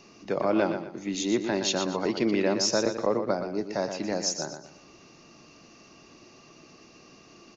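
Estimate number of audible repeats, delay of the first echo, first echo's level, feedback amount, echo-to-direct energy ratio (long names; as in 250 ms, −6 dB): 3, 120 ms, −8.0 dB, 32%, −7.5 dB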